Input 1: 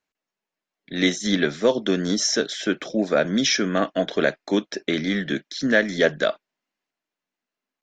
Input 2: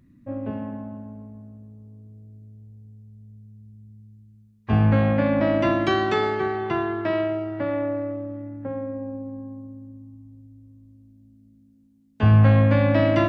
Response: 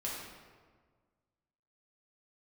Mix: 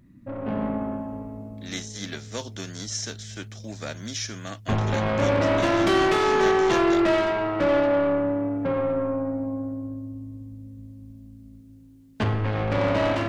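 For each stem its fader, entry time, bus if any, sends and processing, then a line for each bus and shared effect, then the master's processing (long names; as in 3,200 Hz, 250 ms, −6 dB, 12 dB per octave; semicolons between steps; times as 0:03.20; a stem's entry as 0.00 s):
−15.5 dB, 0.70 s, no send, spectral envelope flattened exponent 0.6; parametric band 6,400 Hz +8.5 dB 1.1 octaves
−1.5 dB, 0.00 s, send −3.5 dB, downward compressor 10 to 1, threshold −21 dBFS, peak gain reduction 10.5 dB; soft clipping −30.5 dBFS, distortion −7 dB; automatic gain control gain up to 9 dB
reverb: on, RT60 1.6 s, pre-delay 3 ms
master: no processing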